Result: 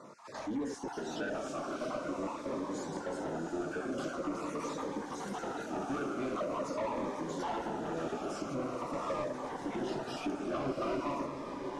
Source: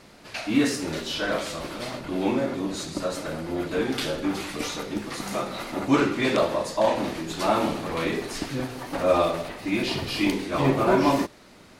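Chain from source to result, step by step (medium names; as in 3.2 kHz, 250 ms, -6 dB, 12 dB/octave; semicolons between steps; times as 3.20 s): random holes in the spectrogram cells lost 26%; high-pass 110 Hz 24 dB/octave; high-order bell 2.9 kHz -15.5 dB; compression 2.5:1, threshold -32 dBFS, peak gain reduction 11.5 dB; overdrive pedal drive 21 dB, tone 2.9 kHz, clips at -19.5 dBFS; distance through air 70 m; echo that smears into a reverb 735 ms, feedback 57%, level -6 dB; on a send at -22 dB: reverberation, pre-delay 3 ms; on the sum: Shepard-style phaser falling 0.45 Hz; trim -7 dB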